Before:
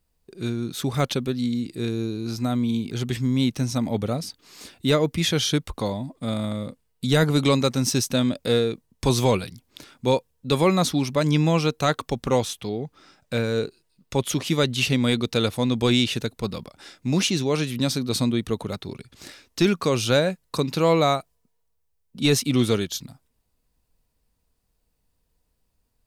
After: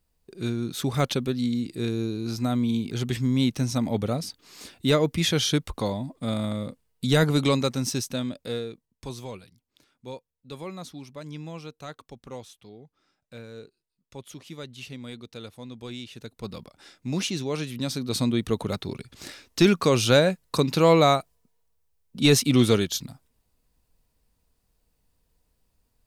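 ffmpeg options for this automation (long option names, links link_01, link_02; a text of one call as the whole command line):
ffmpeg -i in.wav -af "volume=18.5dB,afade=type=out:start_time=7.18:duration=1.04:silence=0.446684,afade=type=out:start_time=8.22:duration=1.01:silence=0.316228,afade=type=in:start_time=16.13:duration=0.44:silence=0.251189,afade=type=in:start_time=17.86:duration=0.85:silence=0.421697" out.wav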